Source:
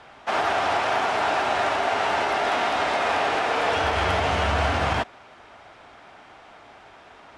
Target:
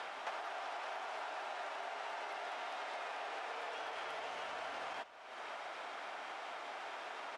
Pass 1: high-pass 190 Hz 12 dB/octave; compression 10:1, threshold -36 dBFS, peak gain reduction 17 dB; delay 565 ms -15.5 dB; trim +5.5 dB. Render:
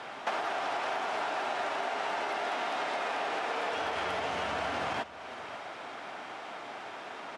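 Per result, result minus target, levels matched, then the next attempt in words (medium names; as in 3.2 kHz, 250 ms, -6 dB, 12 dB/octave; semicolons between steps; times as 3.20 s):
compression: peak gain reduction -10 dB; 250 Hz band +7.0 dB
high-pass 190 Hz 12 dB/octave; compression 10:1, threshold -47.5 dBFS, peak gain reduction 27 dB; delay 565 ms -15.5 dB; trim +5.5 dB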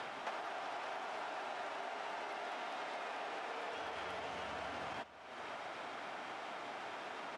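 250 Hz band +7.5 dB
high-pass 470 Hz 12 dB/octave; compression 10:1, threshold -47.5 dBFS, peak gain reduction 26.5 dB; delay 565 ms -15.5 dB; trim +5.5 dB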